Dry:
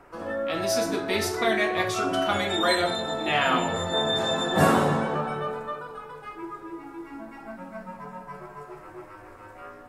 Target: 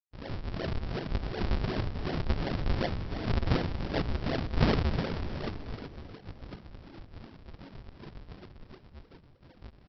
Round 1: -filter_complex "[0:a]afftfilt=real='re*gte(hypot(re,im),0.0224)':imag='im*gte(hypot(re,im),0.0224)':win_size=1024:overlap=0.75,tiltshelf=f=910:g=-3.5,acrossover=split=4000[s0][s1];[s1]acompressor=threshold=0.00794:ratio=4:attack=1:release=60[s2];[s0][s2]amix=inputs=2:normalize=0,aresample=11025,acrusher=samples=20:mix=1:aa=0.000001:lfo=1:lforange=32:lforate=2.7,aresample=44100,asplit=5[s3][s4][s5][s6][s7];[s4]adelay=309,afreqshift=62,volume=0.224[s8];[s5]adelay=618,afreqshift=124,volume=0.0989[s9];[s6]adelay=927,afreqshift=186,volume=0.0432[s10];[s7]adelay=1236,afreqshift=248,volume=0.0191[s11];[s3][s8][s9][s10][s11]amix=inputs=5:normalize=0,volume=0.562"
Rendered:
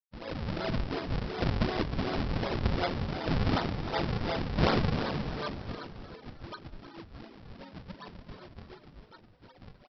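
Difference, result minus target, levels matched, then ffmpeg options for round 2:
decimation with a swept rate: distortion -13 dB
-filter_complex "[0:a]afftfilt=real='re*gte(hypot(re,im),0.0224)':imag='im*gte(hypot(re,im),0.0224)':win_size=1024:overlap=0.75,tiltshelf=f=910:g=-3.5,acrossover=split=4000[s0][s1];[s1]acompressor=threshold=0.00794:ratio=4:attack=1:release=60[s2];[s0][s2]amix=inputs=2:normalize=0,aresample=11025,acrusher=samples=42:mix=1:aa=0.000001:lfo=1:lforange=67.2:lforate=2.7,aresample=44100,asplit=5[s3][s4][s5][s6][s7];[s4]adelay=309,afreqshift=62,volume=0.224[s8];[s5]adelay=618,afreqshift=124,volume=0.0989[s9];[s6]adelay=927,afreqshift=186,volume=0.0432[s10];[s7]adelay=1236,afreqshift=248,volume=0.0191[s11];[s3][s8][s9][s10][s11]amix=inputs=5:normalize=0,volume=0.562"

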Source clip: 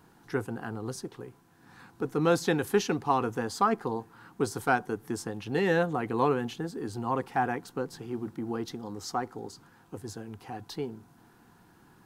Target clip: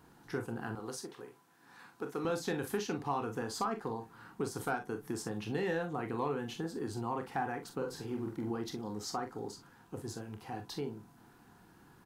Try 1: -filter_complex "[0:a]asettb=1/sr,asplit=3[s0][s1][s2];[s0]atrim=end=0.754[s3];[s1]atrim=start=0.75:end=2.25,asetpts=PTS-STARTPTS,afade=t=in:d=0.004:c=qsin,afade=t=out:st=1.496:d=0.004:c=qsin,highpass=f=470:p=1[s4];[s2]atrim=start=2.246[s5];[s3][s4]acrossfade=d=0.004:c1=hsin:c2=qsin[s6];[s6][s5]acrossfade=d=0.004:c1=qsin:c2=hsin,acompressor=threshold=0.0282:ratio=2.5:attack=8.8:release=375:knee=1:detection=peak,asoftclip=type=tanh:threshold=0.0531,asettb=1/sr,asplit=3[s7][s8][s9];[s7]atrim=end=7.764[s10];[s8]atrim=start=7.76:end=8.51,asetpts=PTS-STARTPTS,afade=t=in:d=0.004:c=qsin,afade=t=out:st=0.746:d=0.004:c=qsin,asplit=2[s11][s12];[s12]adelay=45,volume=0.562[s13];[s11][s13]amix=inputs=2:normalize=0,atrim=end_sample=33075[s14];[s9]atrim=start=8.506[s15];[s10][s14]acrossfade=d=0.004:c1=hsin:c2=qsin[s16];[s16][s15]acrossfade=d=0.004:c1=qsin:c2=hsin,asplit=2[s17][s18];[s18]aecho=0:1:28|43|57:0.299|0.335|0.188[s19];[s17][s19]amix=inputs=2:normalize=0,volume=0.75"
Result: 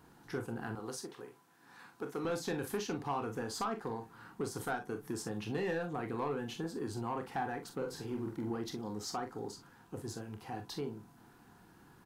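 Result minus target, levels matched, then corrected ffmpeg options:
saturation: distortion +14 dB
-filter_complex "[0:a]asettb=1/sr,asplit=3[s0][s1][s2];[s0]atrim=end=0.754[s3];[s1]atrim=start=0.75:end=2.25,asetpts=PTS-STARTPTS,afade=t=in:d=0.004:c=qsin,afade=t=out:st=1.496:d=0.004:c=qsin,highpass=f=470:p=1[s4];[s2]atrim=start=2.246[s5];[s3][s4]acrossfade=d=0.004:c1=hsin:c2=qsin[s6];[s6][s5]acrossfade=d=0.004:c1=qsin:c2=hsin,acompressor=threshold=0.0282:ratio=2.5:attack=8.8:release=375:knee=1:detection=peak,asoftclip=type=tanh:threshold=0.158,asettb=1/sr,asplit=3[s7][s8][s9];[s7]atrim=end=7.764[s10];[s8]atrim=start=7.76:end=8.51,asetpts=PTS-STARTPTS,afade=t=in:d=0.004:c=qsin,afade=t=out:st=0.746:d=0.004:c=qsin,asplit=2[s11][s12];[s12]adelay=45,volume=0.562[s13];[s11][s13]amix=inputs=2:normalize=0,atrim=end_sample=33075[s14];[s9]atrim=start=8.506[s15];[s10][s14]acrossfade=d=0.004:c1=hsin:c2=qsin[s16];[s16][s15]acrossfade=d=0.004:c1=qsin:c2=hsin,asplit=2[s17][s18];[s18]aecho=0:1:28|43|57:0.299|0.335|0.188[s19];[s17][s19]amix=inputs=2:normalize=0,volume=0.75"

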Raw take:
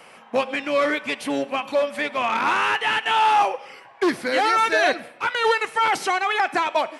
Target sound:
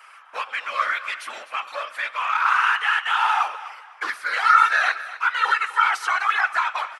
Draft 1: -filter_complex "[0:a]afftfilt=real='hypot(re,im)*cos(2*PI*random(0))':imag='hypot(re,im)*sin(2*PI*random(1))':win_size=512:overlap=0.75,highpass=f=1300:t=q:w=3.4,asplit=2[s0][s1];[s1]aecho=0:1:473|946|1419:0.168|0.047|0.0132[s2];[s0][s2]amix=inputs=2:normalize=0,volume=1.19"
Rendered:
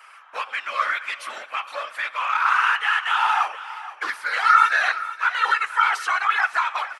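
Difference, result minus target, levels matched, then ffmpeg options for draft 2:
echo 221 ms late
-filter_complex "[0:a]afftfilt=real='hypot(re,im)*cos(2*PI*random(0))':imag='hypot(re,im)*sin(2*PI*random(1))':win_size=512:overlap=0.75,highpass=f=1300:t=q:w=3.4,asplit=2[s0][s1];[s1]aecho=0:1:252|504|756:0.168|0.047|0.0132[s2];[s0][s2]amix=inputs=2:normalize=0,volume=1.19"

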